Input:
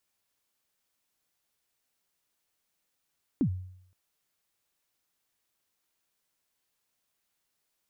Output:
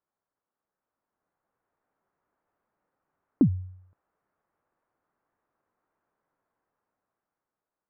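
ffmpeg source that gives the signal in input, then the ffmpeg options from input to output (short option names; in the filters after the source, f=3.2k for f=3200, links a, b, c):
-f lavfi -i "aevalsrc='0.1*pow(10,-3*t/0.69)*sin(2*PI*(320*0.082/log(92/320)*(exp(log(92/320)*min(t,0.082)/0.082)-1)+92*max(t-0.082,0)))':d=0.52:s=44100"
-af "lowpass=f=1.4k:w=0.5412,lowpass=f=1.4k:w=1.3066,lowshelf=f=140:g=-8,dynaudnorm=f=230:g=11:m=10dB"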